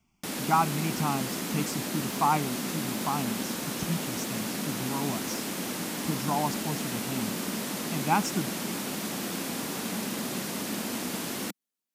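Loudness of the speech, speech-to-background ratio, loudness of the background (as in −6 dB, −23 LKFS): −32.5 LKFS, −0.5 dB, −32.0 LKFS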